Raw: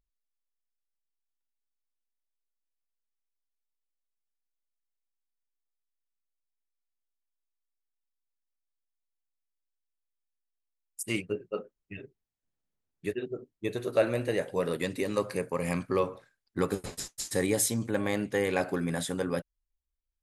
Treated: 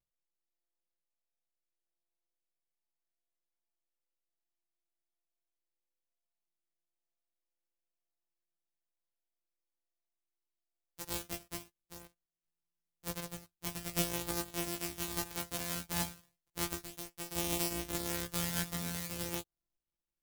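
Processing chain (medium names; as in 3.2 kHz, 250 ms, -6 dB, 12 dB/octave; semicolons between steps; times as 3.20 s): sorted samples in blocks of 256 samples; chorus voices 4, 0.18 Hz, delay 16 ms, depth 1.8 ms; pre-emphasis filter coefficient 0.8; trim +5 dB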